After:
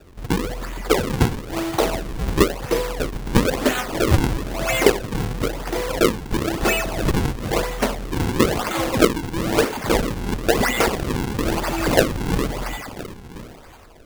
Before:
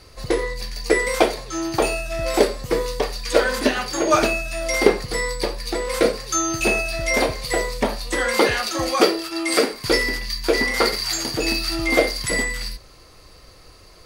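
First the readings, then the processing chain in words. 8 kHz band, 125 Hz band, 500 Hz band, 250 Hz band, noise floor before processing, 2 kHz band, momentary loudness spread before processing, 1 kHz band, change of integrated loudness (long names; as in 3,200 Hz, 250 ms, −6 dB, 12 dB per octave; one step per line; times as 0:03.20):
−3.5 dB, +10.0 dB, −1.0 dB, +3.0 dB, −47 dBFS, −3.5 dB, 7 LU, 0.0 dB, −0.5 dB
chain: echo through a band-pass that steps 360 ms, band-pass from 3,500 Hz, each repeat 0.7 octaves, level −2 dB
sample-and-hold swept by an LFO 41×, swing 160% 1 Hz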